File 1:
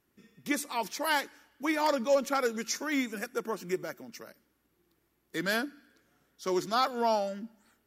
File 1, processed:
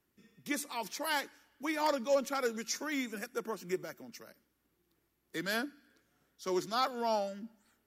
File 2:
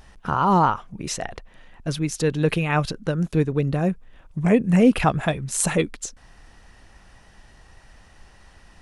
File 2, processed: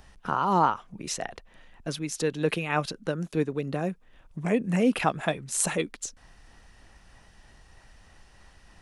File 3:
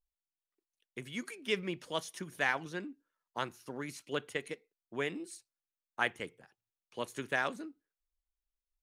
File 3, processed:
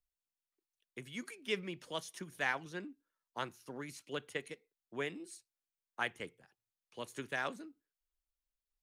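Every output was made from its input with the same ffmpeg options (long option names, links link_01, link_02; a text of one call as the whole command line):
ffmpeg -i in.wav -filter_complex "[0:a]acrossover=split=170|2400[link_01][link_02][link_03];[link_01]acompressor=threshold=-46dB:ratio=6[link_04];[link_02]tremolo=f=3.2:d=0.34[link_05];[link_04][link_05][link_03]amix=inputs=3:normalize=0,volume=-3dB" out.wav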